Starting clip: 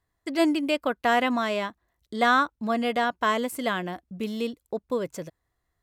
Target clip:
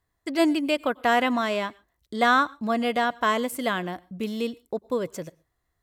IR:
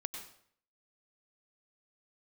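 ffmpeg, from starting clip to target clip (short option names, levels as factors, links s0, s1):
-filter_complex "[0:a]asplit=2[s0][s1];[1:a]atrim=start_sample=2205,afade=t=out:st=0.2:d=0.01,atrim=end_sample=9261,highshelf=f=8000:g=11[s2];[s1][s2]afir=irnorm=-1:irlink=0,volume=0.141[s3];[s0][s3]amix=inputs=2:normalize=0"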